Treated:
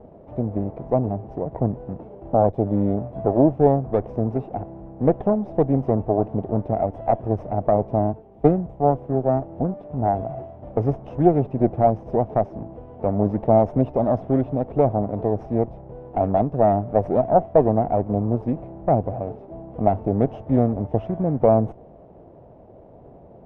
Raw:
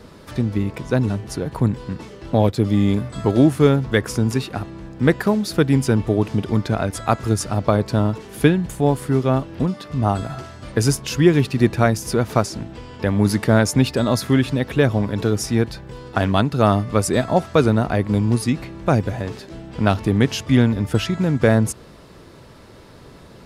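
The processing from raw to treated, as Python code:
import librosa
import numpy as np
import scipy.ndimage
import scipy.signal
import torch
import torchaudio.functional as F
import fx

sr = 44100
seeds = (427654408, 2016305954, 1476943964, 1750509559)

y = fx.lower_of_two(x, sr, delay_ms=0.34)
y = fx.lowpass_res(y, sr, hz=700.0, q=3.9)
y = fx.band_widen(y, sr, depth_pct=40, at=(8.13, 9.43))
y = y * librosa.db_to_amplitude(-4.5)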